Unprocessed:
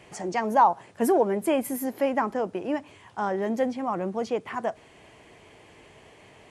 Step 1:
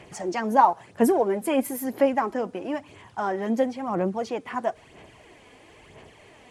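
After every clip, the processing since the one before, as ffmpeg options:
ffmpeg -i in.wav -af "aphaser=in_gain=1:out_gain=1:delay=4.1:decay=0.47:speed=1:type=sinusoidal" out.wav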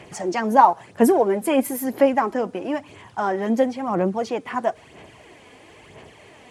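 ffmpeg -i in.wav -af "highpass=62,volume=4dB" out.wav

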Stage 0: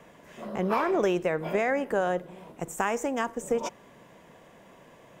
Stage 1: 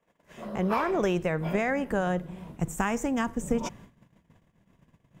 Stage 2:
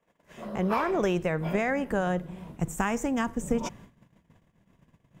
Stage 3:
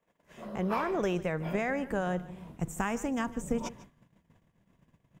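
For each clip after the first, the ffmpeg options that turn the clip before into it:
ffmpeg -i in.wav -af "agate=range=-25dB:threshold=-50dB:ratio=16:detection=peak,asubboost=boost=8.5:cutoff=180" out.wav
ffmpeg -i in.wav -af anull out.wav
ffmpeg -i in.wav -af "aecho=1:1:149:0.126,volume=-4dB" out.wav

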